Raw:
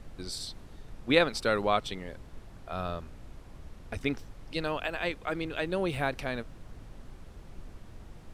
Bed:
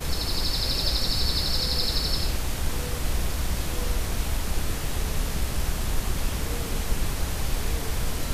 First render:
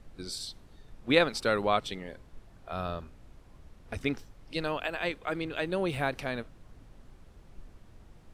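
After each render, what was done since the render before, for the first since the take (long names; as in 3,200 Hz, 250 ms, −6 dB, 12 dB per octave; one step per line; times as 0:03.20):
noise reduction from a noise print 6 dB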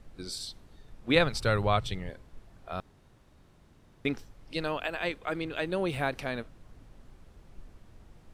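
0:01.15–0:02.10: low shelf with overshoot 170 Hz +11 dB, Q 1.5
0:02.80–0:04.05: fill with room tone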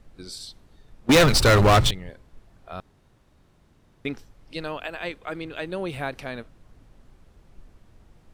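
0:01.09–0:01.91: leveller curve on the samples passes 5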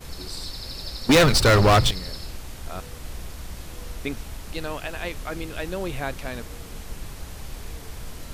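mix in bed −9.5 dB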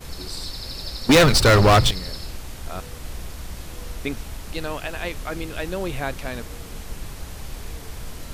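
level +2 dB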